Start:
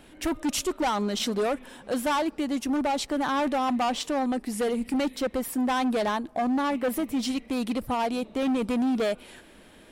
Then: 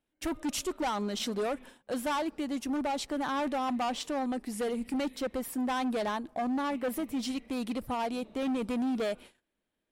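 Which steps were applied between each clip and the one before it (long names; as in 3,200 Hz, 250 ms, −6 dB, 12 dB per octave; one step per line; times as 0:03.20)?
noise gate −43 dBFS, range −27 dB
level −5.5 dB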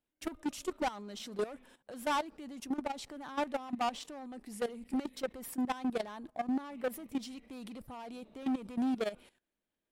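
output level in coarse steps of 15 dB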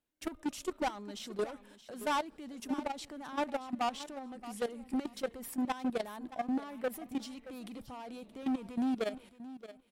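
repeating echo 624 ms, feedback 18%, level −15 dB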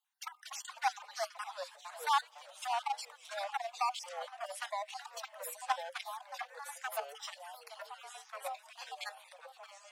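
time-frequency cells dropped at random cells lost 39%
Chebyshev high-pass filter 750 Hz, order 10
delay with pitch and tempo change per echo 194 ms, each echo −3 semitones, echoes 3, each echo −6 dB
level +4.5 dB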